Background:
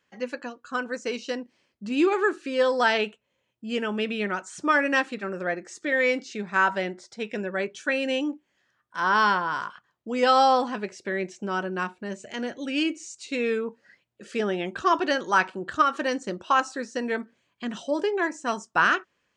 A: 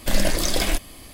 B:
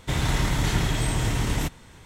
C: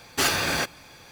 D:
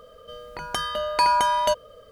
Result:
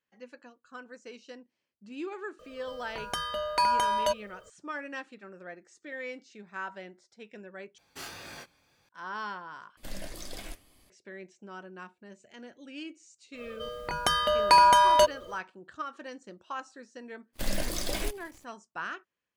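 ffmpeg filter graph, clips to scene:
-filter_complex "[4:a]asplit=2[a][b];[1:a]asplit=2[c][d];[0:a]volume=-16dB[e];[3:a]flanger=delay=20:depth=4.8:speed=1.8[f];[c]flanger=delay=3.1:depth=9.7:regen=78:speed=1.9:shape=triangular[g];[b]acontrast=61[h];[d]acrusher=bits=6:dc=4:mix=0:aa=0.000001[i];[e]asplit=3[j][k][l];[j]atrim=end=7.784[m];[f]atrim=end=1.11,asetpts=PTS-STARTPTS,volume=-16.5dB[n];[k]atrim=start=8.886:end=9.774[o];[g]atrim=end=1.13,asetpts=PTS-STARTPTS,volume=-15dB[p];[l]atrim=start=10.896[q];[a]atrim=end=2.11,asetpts=PTS-STARTPTS,volume=-5.5dB,afade=t=in:d=0.004:c=hsin,afade=t=out:st=2.106:d=0.004:c=hsin,adelay=2390[r];[h]atrim=end=2.11,asetpts=PTS-STARTPTS,volume=-4.5dB,afade=t=in:d=0.1,afade=t=out:st=2.01:d=0.1,adelay=587412S[s];[i]atrim=end=1.13,asetpts=PTS-STARTPTS,volume=-10.5dB,afade=t=in:d=0.05,afade=t=out:st=1.08:d=0.05,adelay=17330[t];[m][n]acrossfade=d=0.004:c1=hsin:c2=hsin[u];[u][o]acrossfade=d=0.004:c1=hsin:c2=hsin[v];[v][p]acrossfade=d=0.004:c1=hsin:c2=hsin[w];[w][q]acrossfade=d=0.004:c1=hsin:c2=hsin[x];[x][r][s][t]amix=inputs=4:normalize=0"

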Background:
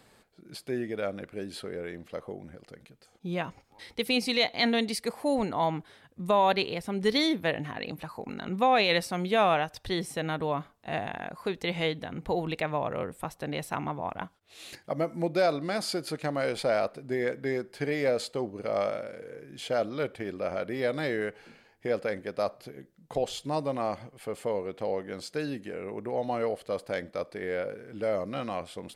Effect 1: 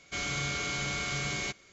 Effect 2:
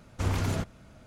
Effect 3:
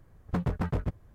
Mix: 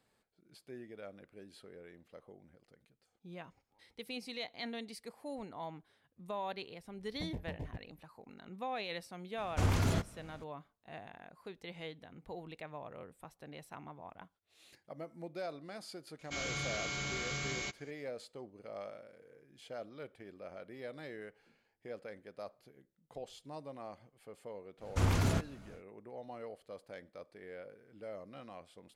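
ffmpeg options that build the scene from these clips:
-filter_complex "[2:a]asplit=2[a][b];[0:a]volume=-16.5dB[c];[3:a]asuperstop=centerf=1300:order=4:qfactor=1.6,atrim=end=1.14,asetpts=PTS-STARTPTS,volume=-14dB,afade=t=in:d=0.004:c=hsin,afade=t=out:st=1.136:d=0.004:c=hsin,adelay=6870[d];[a]atrim=end=1.06,asetpts=PTS-STARTPTS,volume=-2dB,afade=t=in:d=0.004:c=hsin,afade=t=out:st=1.056:d=0.004:c=hsin,adelay=413658S[e];[1:a]atrim=end=1.72,asetpts=PTS-STARTPTS,volume=-5.5dB,afade=t=in:d=0.004:c=hsin,afade=t=out:st=1.716:d=0.004:c=hsin,adelay=16190[f];[b]atrim=end=1.06,asetpts=PTS-STARTPTS,volume=-1.5dB,afade=t=in:d=0.1,afade=t=out:st=0.96:d=0.1,adelay=24770[g];[c][d][e][f][g]amix=inputs=5:normalize=0"

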